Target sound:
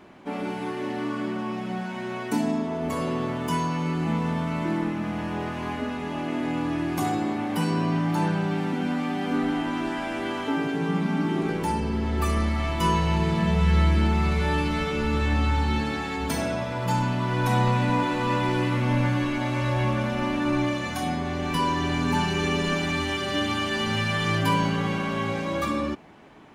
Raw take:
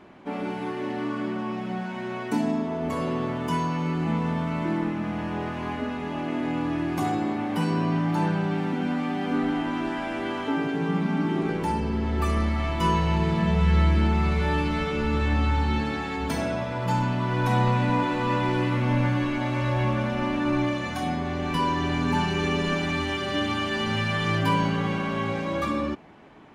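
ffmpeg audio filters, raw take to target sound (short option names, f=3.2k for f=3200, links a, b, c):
-af "highshelf=f=5.9k:g=8.5"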